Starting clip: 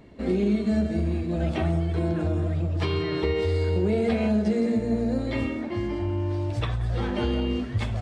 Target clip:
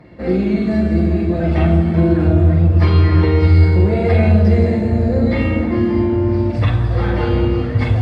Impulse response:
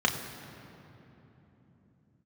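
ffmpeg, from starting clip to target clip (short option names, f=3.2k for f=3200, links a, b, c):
-filter_complex "[1:a]atrim=start_sample=2205,asetrate=30429,aresample=44100[a];[0:a][a]afir=irnorm=-1:irlink=0,volume=-6dB"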